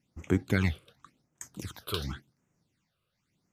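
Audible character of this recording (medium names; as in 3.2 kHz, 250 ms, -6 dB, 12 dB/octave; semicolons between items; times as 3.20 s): phasing stages 8, 0.91 Hz, lowest notch 240–4200 Hz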